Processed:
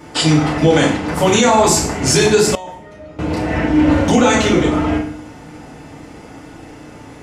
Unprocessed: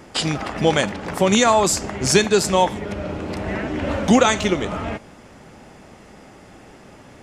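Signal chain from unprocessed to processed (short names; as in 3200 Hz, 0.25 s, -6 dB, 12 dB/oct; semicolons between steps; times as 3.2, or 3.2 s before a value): FDN reverb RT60 0.58 s, low-frequency decay 1.4×, high-frequency decay 0.8×, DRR -5.5 dB; limiter -3 dBFS, peak gain reduction 7 dB; 2.55–3.19 resonator 620 Hz, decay 0.33 s, mix 90%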